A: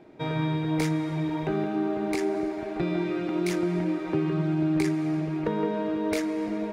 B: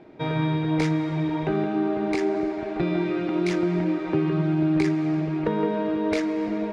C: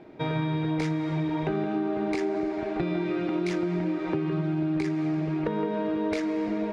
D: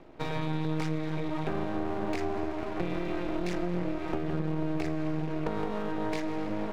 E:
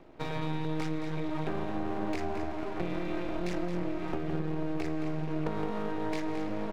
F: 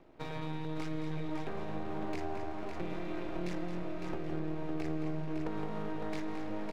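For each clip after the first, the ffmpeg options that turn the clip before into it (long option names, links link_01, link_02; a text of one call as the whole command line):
ffmpeg -i in.wav -af "lowpass=5200,volume=3dB" out.wav
ffmpeg -i in.wav -af "acompressor=threshold=-24dB:ratio=6" out.wav
ffmpeg -i in.wav -af "aeval=exprs='max(val(0),0)':channel_layout=same" out.wav
ffmpeg -i in.wav -af "aecho=1:1:220:0.316,volume=-2dB" out.wav
ffmpeg -i in.wav -af "aecho=1:1:557:0.473,volume=-5.5dB" out.wav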